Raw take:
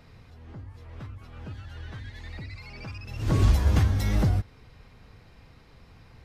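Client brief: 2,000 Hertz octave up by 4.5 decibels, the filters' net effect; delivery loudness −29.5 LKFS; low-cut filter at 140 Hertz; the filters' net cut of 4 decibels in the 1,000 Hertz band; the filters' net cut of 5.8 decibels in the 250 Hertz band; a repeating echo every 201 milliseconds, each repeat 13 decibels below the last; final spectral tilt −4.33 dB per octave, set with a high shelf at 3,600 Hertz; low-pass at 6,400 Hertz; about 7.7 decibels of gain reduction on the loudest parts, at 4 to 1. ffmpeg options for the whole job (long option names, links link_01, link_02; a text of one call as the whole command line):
ffmpeg -i in.wav -af "highpass=140,lowpass=6400,equalizer=frequency=250:width_type=o:gain=-7,equalizer=frequency=1000:width_type=o:gain=-7,equalizer=frequency=2000:width_type=o:gain=5,highshelf=frequency=3600:gain=8.5,acompressor=threshold=-33dB:ratio=4,aecho=1:1:201|402|603:0.224|0.0493|0.0108,volume=10dB" out.wav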